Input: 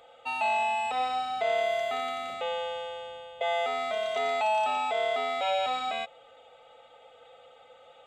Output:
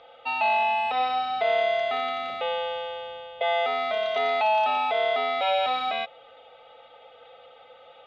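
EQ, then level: inverse Chebyshev low-pass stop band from 8.8 kHz, stop band 40 dB; bass shelf 360 Hz -3 dB; +4.5 dB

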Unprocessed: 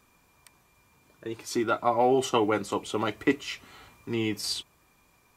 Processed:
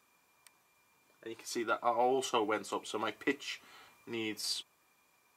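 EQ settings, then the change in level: high-pass 470 Hz 6 dB/octave; -5.0 dB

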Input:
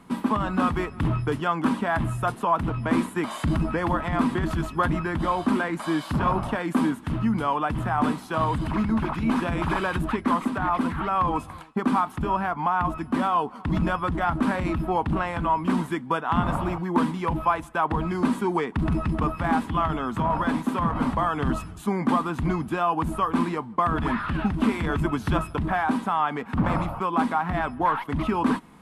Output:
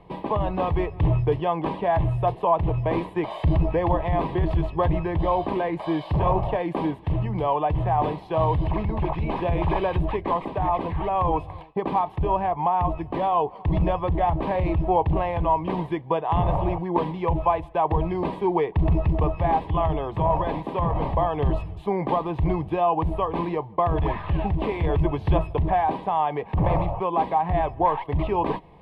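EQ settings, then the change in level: distance through air 430 m; static phaser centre 580 Hz, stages 4; +8.0 dB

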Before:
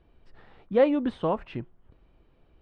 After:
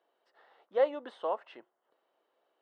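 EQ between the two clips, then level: ladder high-pass 440 Hz, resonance 25%; band-stop 2.4 kHz, Q 6.1; 0.0 dB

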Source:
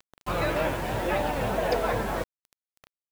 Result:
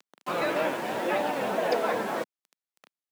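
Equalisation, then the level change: high-pass 200 Hz 24 dB/octave; treble shelf 9.6 kHz -5 dB; 0.0 dB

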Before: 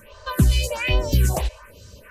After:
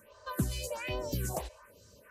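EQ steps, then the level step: high-pass 220 Hz 6 dB/octave; peaking EQ 2.8 kHz -7.5 dB 1.4 oct; -8.5 dB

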